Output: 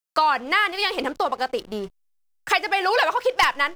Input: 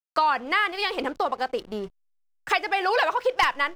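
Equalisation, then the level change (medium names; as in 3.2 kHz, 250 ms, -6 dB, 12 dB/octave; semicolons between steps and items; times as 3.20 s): treble shelf 4.2 kHz +6 dB; +2.0 dB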